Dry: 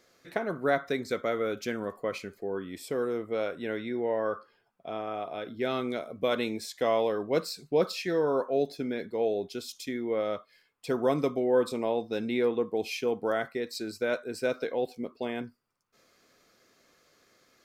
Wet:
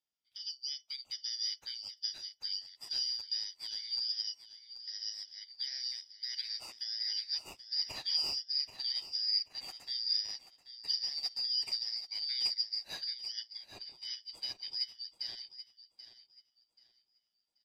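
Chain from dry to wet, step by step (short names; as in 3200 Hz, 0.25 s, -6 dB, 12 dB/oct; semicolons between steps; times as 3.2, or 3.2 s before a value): four-band scrambler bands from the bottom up 4321; 13.04–14.11 bell 11000 Hz -11 dB 2.5 oct; limiter -23 dBFS, peak gain reduction 10 dB; feedback echo 0.783 s, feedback 56%, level -5.5 dB; upward expander 2.5:1, over -48 dBFS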